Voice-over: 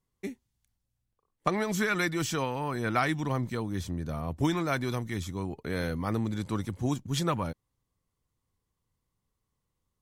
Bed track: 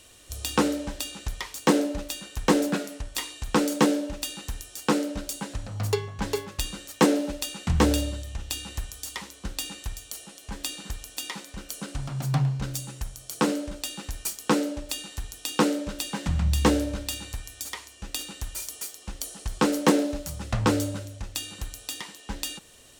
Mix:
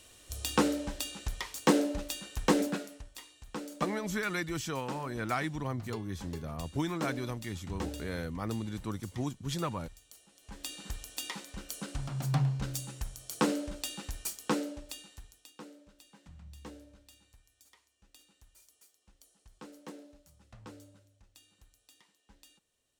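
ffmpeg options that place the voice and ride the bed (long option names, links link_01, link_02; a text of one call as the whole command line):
ffmpeg -i stem1.wav -i stem2.wav -filter_complex "[0:a]adelay=2350,volume=-5.5dB[link_01];[1:a]volume=9dB,afade=type=out:start_time=2.4:duration=0.78:silence=0.211349,afade=type=in:start_time=10.31:duration=0.65:silence=0.223872,afade=type=out:start_time=13.97:duration=1.57:silence=0.0749894[link_02];[link_01][link_02]amix=inputs=2:normalize=0" out.wav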